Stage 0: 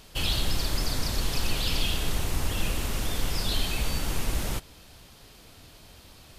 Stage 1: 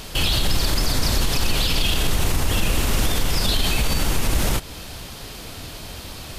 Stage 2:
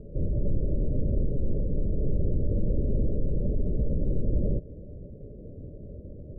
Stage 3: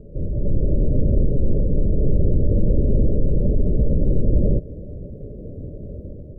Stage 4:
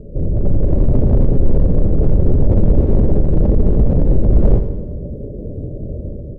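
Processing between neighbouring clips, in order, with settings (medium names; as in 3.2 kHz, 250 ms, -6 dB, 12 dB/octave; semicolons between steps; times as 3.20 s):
in parallel at +2.5 dB: compression, threshold -33 dBFS, peak gain reduction 12.5 dB; on the sum: peak limiter -18.5 dBFS, peak gain reduction 7.5 dB; trim +8 dB
rippled Chebyshev low-pass 600 Hz, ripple 3 dB; trim -2 dB
level rider gain up to 6.5 dB; trim +2 dB
in parallel at -9.5 dB: wavefolder -17 dBFS; on the sum: feedback delay 84 ms, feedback 60%, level -9 dB; loudspeaker Doppler distortion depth 0.49 ms; trim +4 dB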